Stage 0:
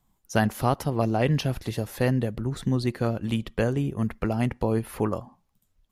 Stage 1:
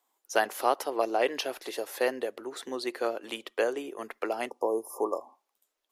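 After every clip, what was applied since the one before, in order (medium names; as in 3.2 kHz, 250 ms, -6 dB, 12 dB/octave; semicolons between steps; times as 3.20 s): spectral replace 4.52–5.37 s, 1.2–4.9 kHz after; inverse Chebyshev high-pass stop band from 180 Hz, stop band 40 dB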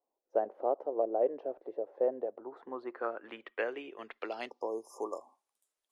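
low-pass sweep 570 Hz -> 9.8 kHz, 2.02–5.42 s; trim -8 dB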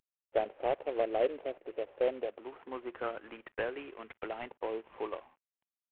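CVSD coder 16 kbps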